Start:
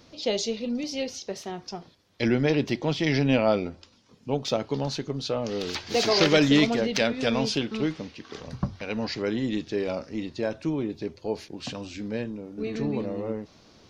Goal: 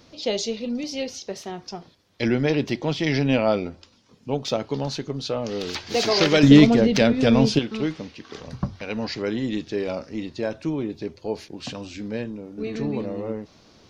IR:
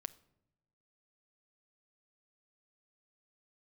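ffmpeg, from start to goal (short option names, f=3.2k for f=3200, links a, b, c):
-filter_complex "[0:a]asettb=1/sr,asplit=3[a][b][c];[a]atrim=end=6.434[d];[b]atrim=start=6.43:end=7.59,asetpts=PTS-STARTPTS,afade=t=in:d=0.004:c=qsin,afade=t=out:st=1.156:d=0.004:c=qsin,lowshelf=f=430:g=11[e];[c]atrim=start=7.586[f];[d][e]acrossfade=d=0.004:c1=hsin:c2=qsin[g];[g][f]acrossfade=d=0.004:c1=qsin:c2=hsin,volume=1.5dB"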